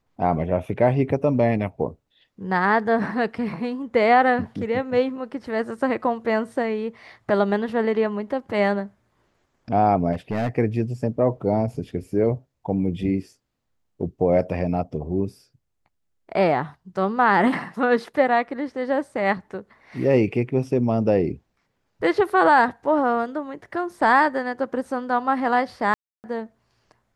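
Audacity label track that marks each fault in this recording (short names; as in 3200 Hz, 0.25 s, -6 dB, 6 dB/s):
10.120000	10.490000	clipped -20 dBFS
25.940000	26.240000	gap 0.299 s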